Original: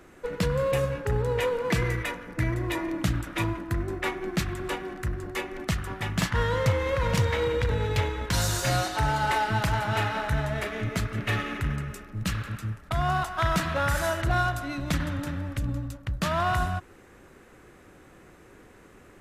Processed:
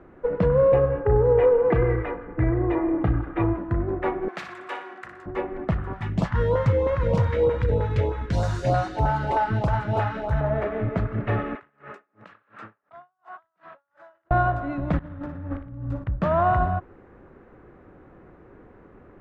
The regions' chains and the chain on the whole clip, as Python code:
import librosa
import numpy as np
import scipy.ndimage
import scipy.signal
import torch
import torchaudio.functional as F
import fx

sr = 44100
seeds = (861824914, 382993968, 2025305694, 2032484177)

y = fx.chain(x, sr, fx.lowpass(hz=2900.0, slope=12),
    fx.comb(ms=2.5, depth=0.46), at=(0.74, 3.57))
y = fx.chain(y, sr, fx.highpass(hz=570.0, slope=6),
    fx.tilt_eq(slope=4.5),
    fx.room_flutter(wall_m=10.4, rt60_s=0.44), at=(4.28, 5.26))
y = fx.chain(y, sr, fx.bass_treble(bass_db=0, treble_db=13),
    fx.filter_lfo_notch(shape='saw_up', hz=3.2, low_hz=250.0, high_hz=2100.0, q=0.78), at=(5.93, 10.41))
y = fx.chain(y, sr, fx.highpass(hz=570.0, slope=12),
    fx.over_compress(threshold_db=-42.0, ratio=-1.0),
    fx.tremolo_db(hz=2.8, depth_db=34), at=(11.55, 14.31))
y = fx.chain(y, sr, fx.over_compress(threshold_db=-36.0, ratio=-0.5),
    fx.room_flutter(wall_m=9.9, rt60_s=0.43), at=(14.99, 16.04))
y = scipy.signal.sosfilt(scipy.signal.butter(2, 1200.0, 'lowpass', fs=sr, output='sos'), y)
y = fx.dynamic_eq(y, sr, hz=570.0, q=1.2, threshold_db=-40.0, ratio=4.0, max_db=6)
y = y * 10.0 ** (3.5 / 20.0)